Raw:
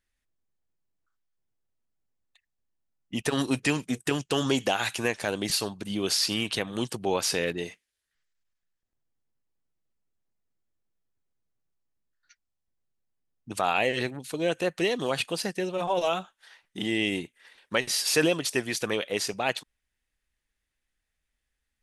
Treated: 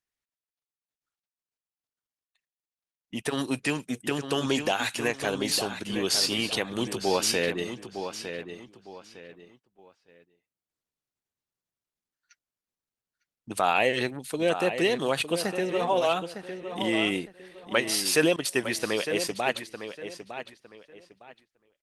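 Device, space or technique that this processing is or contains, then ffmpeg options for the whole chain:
video call: -filter_complex "[0:a]asettb=1/sr,asplit=3[s0][s1][s2];[s0]atrim=end=18.364[s3];[s1]atrim=start=18.36:end=18.89,asetpts=PTS-STARTPTS,afade=t=in:d=0.004:c=qsin,afade=t=out:st=0.526:d=0.004:c=qsin,agate=range=0.00708:threshold=0.02:ratio=16:detection=peak[s4];[s2]atrim=start=18.886[s5];[s3][s4]acrossfade=d=0.004:c1=hsin:c2=qsin[s6];[s6][s5]acrossfade=d=0.004:c1=qsin:c2=hsin,highpass=f=140:p=1,asplit=2[s7][s8];[s8]adelay=907,lowpass=f=4200:p=1,volume=0.355,asplit=2[s9][s10];[s10]adelay=907,lowpass=f=4200:p=1,volume=0.3,asplit=2[s11][s12];[s12]adelay=907,lowpass=f=4200:p=1,volume=0.3[s13];[s7][s9][s11][s13]amix=inputs=4:normalize=0,dynaudnorm=f=830:g=13:m=1.68,agate=range=0.398:threshold=0.00178:ratio=16:detection=peak,volume=0.794" -ar 48000 -c:a libopus -b:a 32k

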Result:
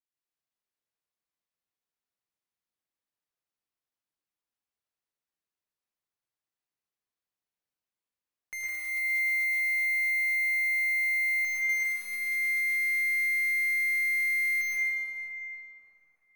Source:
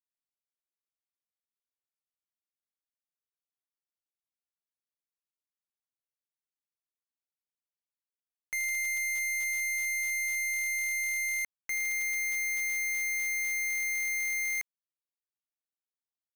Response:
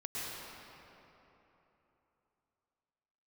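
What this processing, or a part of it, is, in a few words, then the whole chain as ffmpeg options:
swimming-pool hall: -filter_complex "[1:a]atrim=start_sample=2205[s0];[0:a][s0]afir=irnorm=-1:irlink=0,highshelf=f=5200:g=-4,volume=1.19"

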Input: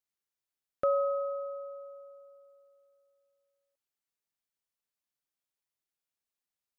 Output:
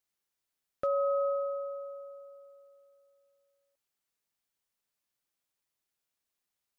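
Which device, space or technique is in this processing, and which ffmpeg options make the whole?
clipper into limiter: -af "asoftclip=type=hard:threshold=0.1,alimiter=level_in=1.5:limit=0.0631:level=0:latency=1:release=229,volume=0.668,volume=1.68"

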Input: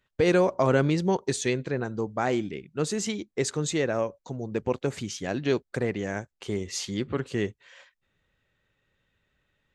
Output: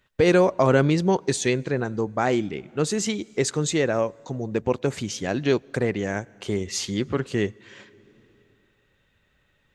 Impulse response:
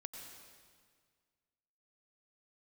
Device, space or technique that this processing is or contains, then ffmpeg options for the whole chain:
ducked reverb: -filter_complex "[0:a]asplit=3[s0][s1][s2];[1:a]atrim=start_sample=2205[s3];[s1][s3]afir=irnorm=-1:irlink=0[s4];[s2]apad=whole_len=429848[s5];[s4][s5]sidechaincompress=threshold=0.00562:ratio=5:attack=16:release=578,volume=0.841[s6];[s0][s6]amix=inputs=2:normalize=0,volume=1.5"

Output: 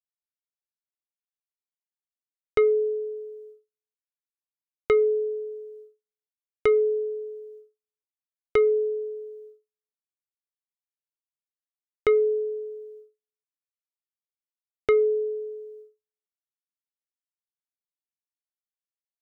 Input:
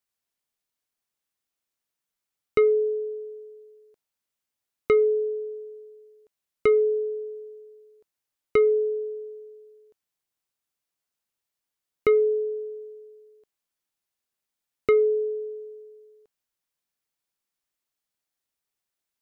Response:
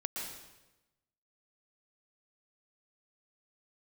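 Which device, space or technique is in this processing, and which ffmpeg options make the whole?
low shelf boost with a cut just above: -af "lowshelf=f=92:g=5,equalizer=f=220:t=o:w=0.92:g=-5.5,agate=range=0.00447:threshold=0.00501:ratio=16:detection=peak"

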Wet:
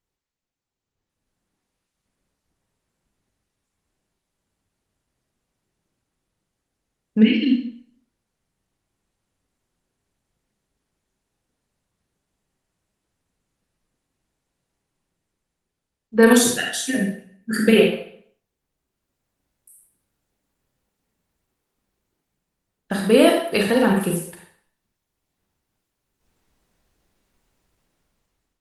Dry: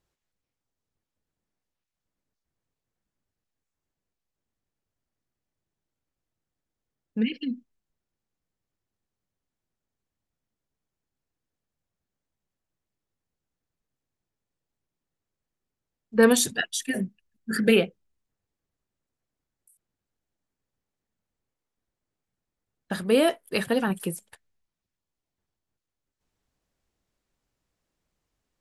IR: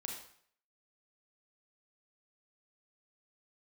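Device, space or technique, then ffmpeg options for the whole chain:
speakerphone in a meeting room: -filter_complex "[1:a]atrim=start_sample=2205[s0];[0:a][s0]afir=irnorm=-1:irlink=0,dynaudnorm=f=460:g=5:m=5.96,volume=0.891" -ar 48000 -c:a libopus -b:a 24k

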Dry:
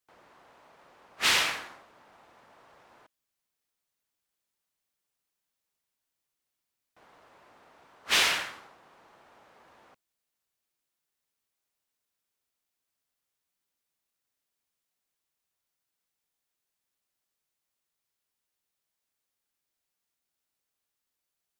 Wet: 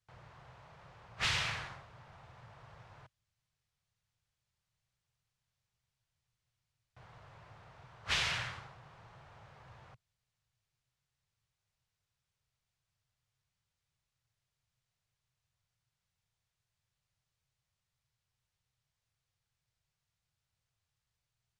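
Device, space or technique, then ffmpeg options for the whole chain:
jukebox: -af "lowpass=6600,lowshelf=f=180:t=q:w=3:g=13.5,acompressor=threshold=0.0224:ratio=3"

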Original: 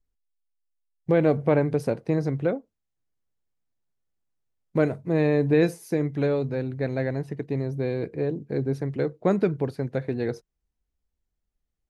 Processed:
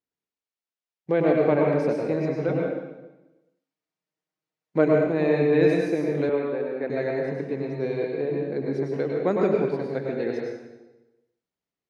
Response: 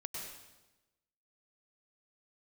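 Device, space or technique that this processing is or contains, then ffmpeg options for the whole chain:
supermarket ceiling speaker: -filter_complex "[0:a]highpass=230,lowpass=5300[s0];[1:a]atrim=start_sample=2205[s1];[s0][s1]afir=irnorm=-1:irlink=0,asettb=1/sr,asplit=3[s2][s3][s4];[s2]atrim=end=2.484[s5];[s3]atrim=start=2.48:end=5.07,asetpts=PTS-STARTPTS,afade=t=in:d=0.004:c=qsin,afade=t=out:st=2.586:d=0.004:c=qsin,aecho=1:1:6.4:0.64,atrim=end_sample=114219[s6];[s4]atrim=start=5.066[s7];[s5][s6]acrossfade=d=0.004:c1=hsin:c2=qsin[s8];[s8][s7]acrossfade=d=0.004:c1=qsin:c2=hsin,asettb=1/sr,asplit=3[s9][s10][s11];[s9]atrim=end=6.294[s12];[s10]atrim=start=6.29:end=6.9,asetpts=PTS-STARTPTS,afade=t=in:d=0.004:c=qsin,afade=t=out:st=0.606:d=0.004:c=qsin,acrossover=split=230 3200:gain=0.224 1 0.0794[s13][s14][s15];[s13][s14][s15]amix=inputs=3:normalize=0[s16];[s11]atrim=start=6.896[s17];[s12][s16]acrossfade=d=0.004:c1=hsin:c2=qsin[s18];[s18][s17]acrossfade=d=0.004:c1=qsin:c2=hsin,volume=1.41"

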